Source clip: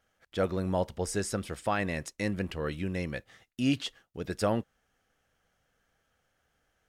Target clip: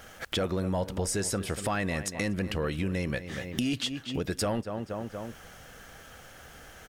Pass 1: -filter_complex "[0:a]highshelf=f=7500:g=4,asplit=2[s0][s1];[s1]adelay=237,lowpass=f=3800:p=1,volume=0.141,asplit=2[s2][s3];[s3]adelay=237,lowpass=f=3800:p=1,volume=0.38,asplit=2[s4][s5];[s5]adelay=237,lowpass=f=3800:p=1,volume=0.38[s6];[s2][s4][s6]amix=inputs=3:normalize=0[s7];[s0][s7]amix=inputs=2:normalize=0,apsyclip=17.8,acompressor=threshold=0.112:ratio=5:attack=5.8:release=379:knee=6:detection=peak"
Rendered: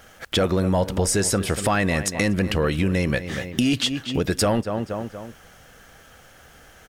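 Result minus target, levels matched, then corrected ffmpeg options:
compression: peak gain reduction -9 dB
-filter_complex "[0:a]highshelf=f=7500:g=4,asplit=2[s0][s1];[s1]adelay=237,lowpass=f=3800:p=1,volume=0.141,asplit=2[s2][s3];[s3]adelay=237,lowpass=f=3800:p=1,volume=0.38,asplit=2[s4][s5];[s5]adelay=237,lowpass=f=3800:p=1,volume=0.38[s6];[s2][s4][s6]amix=inputs=3:normalize=0[s7];[s0][s7]amix=inputs=2:normalize=0,apsyclip=17.8,acompressor=threshold=0.0316:ratio=5:attack=5.8:release=379:knee=6:detection=peak"

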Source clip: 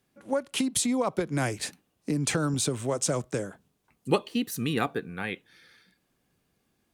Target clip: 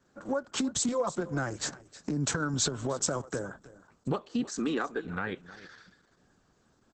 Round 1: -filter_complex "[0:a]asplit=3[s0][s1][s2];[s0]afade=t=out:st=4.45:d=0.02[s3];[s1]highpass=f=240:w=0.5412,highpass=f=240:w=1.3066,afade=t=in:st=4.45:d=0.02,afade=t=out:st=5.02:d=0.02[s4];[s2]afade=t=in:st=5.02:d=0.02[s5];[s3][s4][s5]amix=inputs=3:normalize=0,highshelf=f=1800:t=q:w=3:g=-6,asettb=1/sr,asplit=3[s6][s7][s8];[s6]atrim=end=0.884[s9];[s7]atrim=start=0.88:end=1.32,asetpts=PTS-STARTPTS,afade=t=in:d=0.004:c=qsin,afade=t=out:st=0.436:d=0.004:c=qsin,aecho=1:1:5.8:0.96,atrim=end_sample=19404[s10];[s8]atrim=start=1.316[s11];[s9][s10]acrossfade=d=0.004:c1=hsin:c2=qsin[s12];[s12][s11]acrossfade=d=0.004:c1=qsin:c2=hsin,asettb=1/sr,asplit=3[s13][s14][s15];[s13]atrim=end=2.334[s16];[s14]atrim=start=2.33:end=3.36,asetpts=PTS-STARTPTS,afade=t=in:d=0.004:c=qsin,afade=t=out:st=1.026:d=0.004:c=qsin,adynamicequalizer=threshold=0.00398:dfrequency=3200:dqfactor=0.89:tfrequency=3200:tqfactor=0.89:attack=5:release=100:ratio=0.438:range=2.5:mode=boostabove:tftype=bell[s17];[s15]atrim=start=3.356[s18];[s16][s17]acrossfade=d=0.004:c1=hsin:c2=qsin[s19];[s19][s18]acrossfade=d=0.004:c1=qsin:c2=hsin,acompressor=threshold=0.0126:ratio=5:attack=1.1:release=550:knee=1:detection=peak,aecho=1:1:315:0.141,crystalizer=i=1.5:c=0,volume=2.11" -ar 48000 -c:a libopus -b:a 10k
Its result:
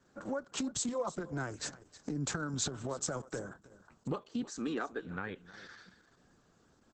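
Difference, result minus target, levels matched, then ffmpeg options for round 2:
compression: peak gain reduction +5.5 dB
-filter_complex "[0:a]asplit=3[s0][s1][s2];[s0]afade=t=out:st=4.45:d=0.02[s3];[s1]highpass=f=240:w=0.5412,highpass=f=240:w=1.3066,afade=t=in:st=4.45:d=0.02,afade=t=out:st=5.02:d=0.02[s4];[s2]afade=t=in:st=5.02:d=0.02[s5];[s3][s4][s5]amix=inputs=3:normalize=0,highshelf=f=1800:t=q:w=3:g=-6,asettb=1/sr,asplit=3[s6][s7][s8];[s6]atrim=end=0.884[s9];[s7]atrim=start=0.88:end=1.32,asetpts=PTS-STARTPTS,afade=t=in:d=0.004:c=qsin,afade=t=out:st=0.436:d=0.004:c=qsin,aecho=1:1:5.8:0.96,atrim=end_sample=19404[s10];[s8]atrim=start=1.316[s11];[s9][s10]acrossfade=d=0.004:c1=hsin:c2=qsin[s12];[s12][s11]acrossfade=d=0.004:c1=qsin:c2=hsin,asettb=1/sr,asplit=3[s13][s14][s15];[s13]atrim=end=2.334[s16];[s14]atrim=start=2.33:end=3.36,asetpts=PTS-STARTPTS,afade=t=in:d=0.004:c=qsin,afade=t=out:st=1.026:d=0.004:c=qsin,adynamicequalizer=threshold=0.00398:dfrequency=3200:dqfactor=0.89:tfrequency=3200:tqfactor=0.89:attack=5:release=100:ratio=0.438:range=2.5:mode=boostabove:tftype=bell[s17];[s15]atrim=start=3.356[s18];[s16][s17]acrossfade=d=0.004:c1=hsin:c2=qsin[s19];[s19][s18]acrossfade=d=0.004:c1=qsin:c2=hsin,acompressor=threshold=0.0282:ratio=5:attack=1.1:release=550:knee=1:detection=peak,aecho=1:1:315:0.141,crystalizer=i=1.5:c=0,volume=2.11" -ar 48000 -c:a libopus -b:a 10k

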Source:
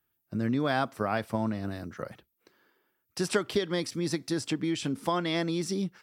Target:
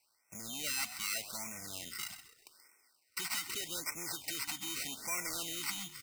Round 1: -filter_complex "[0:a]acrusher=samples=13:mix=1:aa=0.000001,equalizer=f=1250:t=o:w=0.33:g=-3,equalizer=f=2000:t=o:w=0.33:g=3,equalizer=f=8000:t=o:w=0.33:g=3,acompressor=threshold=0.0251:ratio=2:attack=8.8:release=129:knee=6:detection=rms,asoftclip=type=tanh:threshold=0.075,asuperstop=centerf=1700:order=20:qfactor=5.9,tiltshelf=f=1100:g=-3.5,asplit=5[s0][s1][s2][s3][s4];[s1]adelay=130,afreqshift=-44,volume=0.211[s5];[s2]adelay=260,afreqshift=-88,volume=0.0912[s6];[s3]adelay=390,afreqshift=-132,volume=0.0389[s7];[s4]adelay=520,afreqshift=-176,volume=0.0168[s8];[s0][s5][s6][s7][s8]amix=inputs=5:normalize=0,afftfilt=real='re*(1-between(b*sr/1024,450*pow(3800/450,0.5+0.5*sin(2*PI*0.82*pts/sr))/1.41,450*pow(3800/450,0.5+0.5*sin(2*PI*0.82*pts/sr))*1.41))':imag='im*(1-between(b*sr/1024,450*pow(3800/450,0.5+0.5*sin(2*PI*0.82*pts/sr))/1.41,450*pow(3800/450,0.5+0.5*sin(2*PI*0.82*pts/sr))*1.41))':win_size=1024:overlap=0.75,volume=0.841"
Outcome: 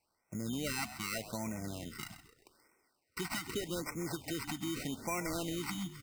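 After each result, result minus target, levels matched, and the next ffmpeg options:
saturation: distortion -13 dB; 1 kHz band +5.0 dB
-filter_complex "[0:a]acrusher=samples=13:mix=1:aa=0.000001,equalizer=f=1250:t=o:w=0.33:g=-3,equalizer=f=2000:t=o:w=0.33:g=3,equalizer=f=8000:t=o:w=0.33:g=3,acompressor=threshold=0.0251:ratio=2:attack=8.8:release=129:knee=6:detection=rms,asoftclip=type=tanh:threshold=0.0211,asuperstop=centerf=1700:order=20:qfactor=5.9,tiltshelf=f=1100:g=-3.5,asplit=5[s0][s1][s2][s3][s4];[s1]adelay=130,afreqshift=-44,volume=0.211[s5];[s2]adelay=260,afreqshift=-88,volume=0.0912[s6];[s3]adelay=390,afreqshift=-132,volume=0.0389[s7];[s4]adelay=520,afreqshift=-176,volume=0.0168[s8];[s0][s5][s6][s7][s8]amix=inputs=5:normalize=0,afftfilt=real='re*(1-between(b*sr/1024,450*pow(3800/450,0.5+0.5*sin(2*PI*0.82*pts/sr))/1.41,450*pow(3800/450,0.5+0.5*sin(2*PI*0.82*pts/sr))*1.41))':imag='im*(1-between(b*sr/1024,450*pow(3800/450,0.5+0.5*sin(2*PI*0.82*pts/sr))/1.41,450*pow(3800/450,0.5+0.5*sin(2*PI*0.82*pts/sr))*1.41))':win_size=1024:overlap=0.75,volume=0.841"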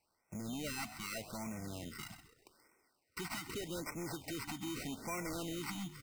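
1 kHz band +5.5 dB
-filter_complex "[0:a]acrusher=samples=13:mix=1:aa=0.000001,equalizer=f=1250:t=o:w=0.33:g=-3,equalizer=f=2000:t=o:w=0.33:g=3,equalizer=f=8000:t=o:w=0.33:g=3,acompressor=threshold=0.0251:ratio=2:attack=8.8:release=129:knee=6:detection=rms,asoftclip=type=tanh:threshold=0.0211,asuperstop=centerf=1700:order=20:qfactor=5.9,tiltshelf=f=1100:g=-13.5,asplit=5[s0][s1][s2][s3][s4];[s1]adelay=130,afreqshift=-44,volume=0.211[s5];[s2]adelay=260,afreqshift=-88,volume=0.0912[s6];[s3]adelay=390,afreqshift=-132,volume=0.0389[s7];[s4]adelay=520,afreqshift=-176,volume=0.0168[s8];[s0][s5][s6][s7][s8]amix=inputs=5:normalize=0,afftfilt=real='re*(1-between(b*sr/1024,450*pow(3800/450,0.5+0.5*sin(2*PI*0.82*pts/sr))/1.41,450*pow(3800/450,0.5+0.5*sin(2*PI*0.82*pts/sr))*1.41))':imag='im*(1-between(b*sr/1024,450*pow(3800/450,0.5+0.5*sin(2*PI*0.82*pts/sr))/1.41,450*pow(3800/450,0.5+0.5*sin(2*PI*0.82*pts/sr))*1.41))':win_size=1024:overlap=0.75,volume=0.841"

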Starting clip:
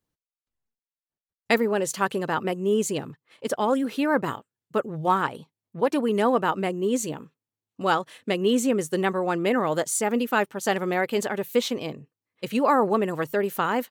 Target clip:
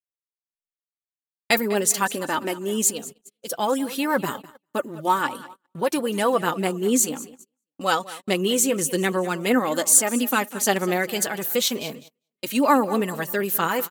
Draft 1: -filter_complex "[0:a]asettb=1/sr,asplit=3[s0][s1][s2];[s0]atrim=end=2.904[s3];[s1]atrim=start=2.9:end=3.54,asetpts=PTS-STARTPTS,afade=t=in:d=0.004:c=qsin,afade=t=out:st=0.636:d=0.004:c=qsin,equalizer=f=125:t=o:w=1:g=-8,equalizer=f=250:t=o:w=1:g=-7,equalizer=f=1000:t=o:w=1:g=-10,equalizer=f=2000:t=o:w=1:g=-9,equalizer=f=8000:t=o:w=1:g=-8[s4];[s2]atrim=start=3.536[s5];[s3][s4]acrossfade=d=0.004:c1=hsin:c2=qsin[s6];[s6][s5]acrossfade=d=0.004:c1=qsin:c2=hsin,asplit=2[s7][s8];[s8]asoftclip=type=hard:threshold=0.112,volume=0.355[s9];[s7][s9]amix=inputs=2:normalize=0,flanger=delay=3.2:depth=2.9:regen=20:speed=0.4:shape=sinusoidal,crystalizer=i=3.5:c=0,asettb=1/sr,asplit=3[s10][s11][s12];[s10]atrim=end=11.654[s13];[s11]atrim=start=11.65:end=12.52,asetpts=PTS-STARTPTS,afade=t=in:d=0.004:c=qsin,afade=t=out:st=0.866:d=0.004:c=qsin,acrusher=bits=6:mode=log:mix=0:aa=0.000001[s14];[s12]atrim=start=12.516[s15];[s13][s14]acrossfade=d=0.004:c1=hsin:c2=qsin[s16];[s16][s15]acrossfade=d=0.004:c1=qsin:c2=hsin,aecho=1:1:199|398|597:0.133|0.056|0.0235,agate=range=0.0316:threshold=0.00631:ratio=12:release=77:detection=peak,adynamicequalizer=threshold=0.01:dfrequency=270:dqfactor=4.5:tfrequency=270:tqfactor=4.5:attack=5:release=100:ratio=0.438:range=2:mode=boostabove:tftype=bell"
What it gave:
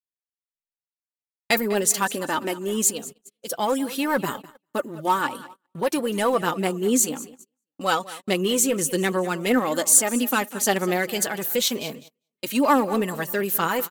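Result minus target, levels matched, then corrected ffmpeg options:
hard clipper: distortion +39 dB
-filter_complex "[0:a]asettb=1/sr,asplit=3[s0][s1][s2];[s0]atrim=end=2.904[s3];[s1]atrim=start=2.9:end=3.54,asetpts=PTS-STARTPTS,afade=t=in:d=0.004:c=qsin,afade=t=out:st=0.636:d=0.004:c=qsin,equalizer=f=125:t=o:w=1:g=-8,equalizer=f=250:t=o:w=1:g=-7,equalizer=f=1000:t=o:w=1:g=-10,equalizer=f=2000:t=o:w=1:g=-9,equalizer=f=8000:t=o:w=1:g=-8[s4];[s2]atrim=start=3.536[s5];[s3][s4]acrossfade=d=0.004:c1=hsin:c2=qsin[s6];[s6][s5]acrossfade=d=0.004:c1=qsin:c2=hsin,asplit=2[s7][s8];[s8]asoftclip=type=hard:threshold=0.335,volume=0.355[s9];[s7][s9]amix=inputs=2:normalize=0,flanger=delay=3.2:depth=2.9:regen=20:speed=0.4:shape=sinusoidal,crystalizer=i=3.5:c=0,asettb=1/sr,asplit=3[s10][s11][s12];[s10]atrim=end=11.654[s13];[s11]atrim=start=11.65:end=12.52,asetpts=PTS-STARTPTS,afade=t=in:d=0.004:c=qsin,afade=t=out:st=0.866:d=0.004:c=qsin,acrusher=bits=6:mode=log:mix=0:aa=0.000001[s14];[s12]atrim=start=12.516[s15];[s13][s14]acrossfade=d=0.004:c1=hsin:c2=qsin[s16];[s16][s15]acrossfade=d=0.004:c1=qsin:c2=hsin,aecho=1:1:199|398|597:0.133|0.056|0.0235,agate=range=0.0316:threshold=0.00631:ratio=12:release=77:detection=peak,adynamicequalizer=threshold=0.01:dfrequency=270:dqfactor=4.5:tfrequency=270:tqfactor=4.5:attack=5:release=100:ratio=0.438:range=2:mode=boostabove:tftype=bell"

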